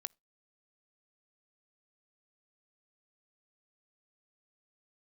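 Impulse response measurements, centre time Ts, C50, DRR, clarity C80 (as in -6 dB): 1 ms, 31.0 dB, 17.5 dB, 38.5 dB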